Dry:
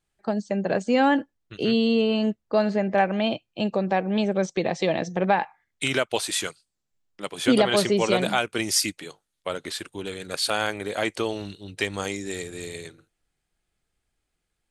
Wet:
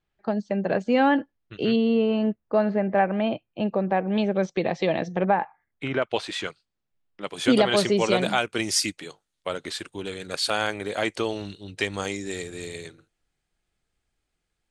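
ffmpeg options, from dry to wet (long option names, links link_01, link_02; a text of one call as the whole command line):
ffmpeg -i in.wav -af "asetnsamples=nb_out_samples=441:pad=0,asendcmd='1.76 lowpass f 2100;4.08 lowpass f 3900;5.24 lowpass f 1600;6.02 lowpass f 3500;7.27 lowpass f 8900',lowpass=3600" out.wav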